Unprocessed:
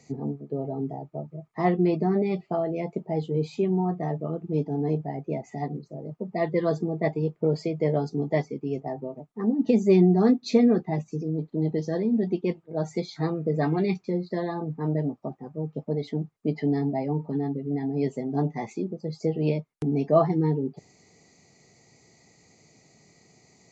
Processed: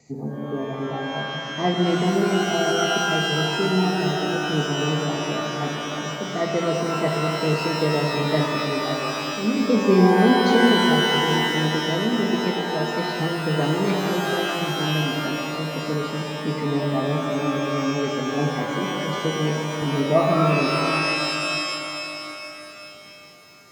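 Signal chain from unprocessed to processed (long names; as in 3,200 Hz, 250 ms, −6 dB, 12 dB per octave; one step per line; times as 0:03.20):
pitch vibrato 0.92 Hz 8.9 cents
reverb with rising layers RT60 3.2 s, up +12 semitones, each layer −2 dB, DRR 1 dB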